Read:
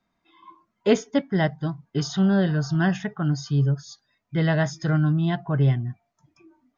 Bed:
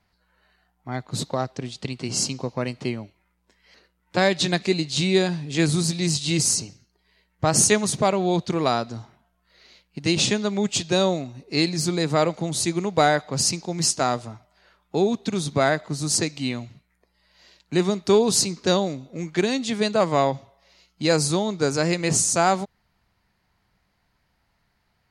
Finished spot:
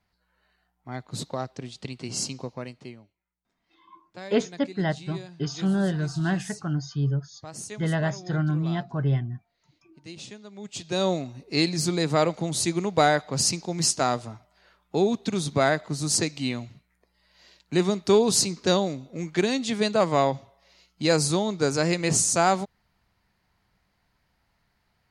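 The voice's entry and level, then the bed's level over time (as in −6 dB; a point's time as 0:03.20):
3.45 s, −4.0 dB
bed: 0:02.42 −5.5 dB
0:03.21 −20.5 dB
0:10.49 −20.5 dB
0:11.11 −1.5 dB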